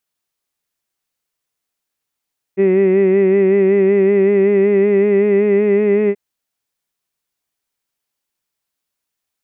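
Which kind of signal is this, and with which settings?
vowel by formant synthesis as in hid, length 3.58 s, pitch 190 Hz, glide +1.5 semitones, vibrato depth 0.55 semitones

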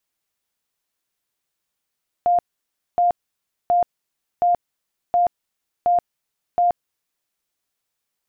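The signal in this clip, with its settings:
tone bursts 703 Hz, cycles 90, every 0.72 s, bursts 7, −13.5 dBFS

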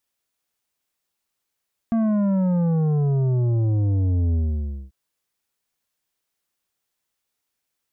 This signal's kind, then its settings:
bass drop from 230 Hz, over 2.99 s, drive 9 dB, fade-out 0.57 s, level −18.5 dB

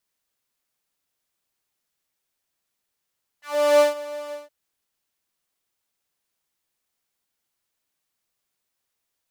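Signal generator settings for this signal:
subtractive patch with pulse-width modulation D5, sub 0 dB, filter highpass, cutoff 520 Hz, Q 2.9, filter envelope 2 octaves, filter decay 0.12 s, filter sustain 10%, attack 381 ms, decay 0.14 s, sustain −18.5 dB, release 0.17 s, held 0.90 s, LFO 3.3 Hz, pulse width 47%, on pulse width 19%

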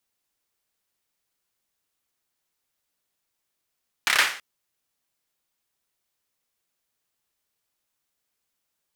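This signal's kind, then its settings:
synth clap length 0.33 s, bursts 5, apart 29 ms, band 1,800 Hz, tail 0.44 s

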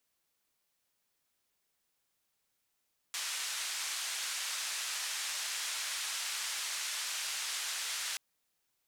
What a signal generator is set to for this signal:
band-limited noise 1,300–7,800 Hz, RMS −37.5 dBFS 5.03 s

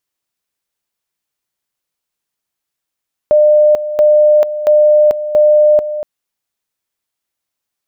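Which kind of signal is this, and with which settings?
tone at two levels in turn 602 Hz −5 dBFS, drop 12 dB, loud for 0.44 s, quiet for 0.24 s, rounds 4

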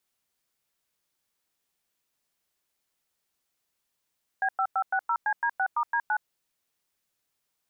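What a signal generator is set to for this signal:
touch tones "B5560CD6*D9", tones 68 ms, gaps 100 ms, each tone −25.5 dBFS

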